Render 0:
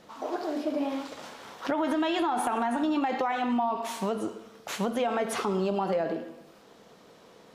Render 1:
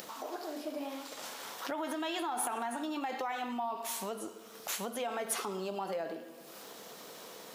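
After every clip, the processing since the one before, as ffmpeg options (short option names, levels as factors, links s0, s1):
-af "acompressor=mode=upward:threshold=0.0355:ratio=2.5,aemphasis=mode=production:type=bsi,volume=0.422"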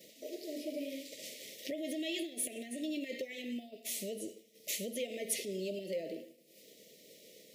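-af "asuperstop=centerf=1100:order=20:qfactor=0.87,agate=range=0.0224:threshold=0.00708:ratio=3:detection=peak"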